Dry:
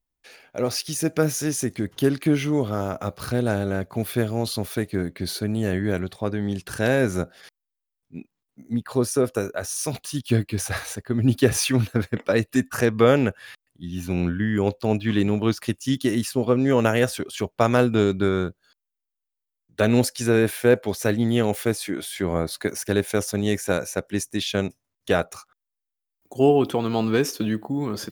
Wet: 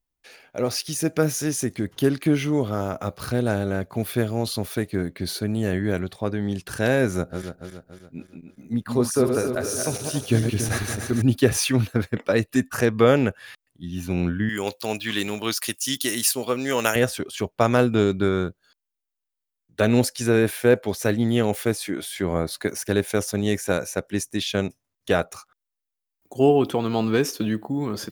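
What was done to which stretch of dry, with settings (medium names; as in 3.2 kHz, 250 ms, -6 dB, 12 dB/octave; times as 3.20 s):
7.14–11.22 s: backward echo that repeats 142 ms, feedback 67%, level -5.5 dB
14.49–16.96 s: tilt EQ +4 dB/octave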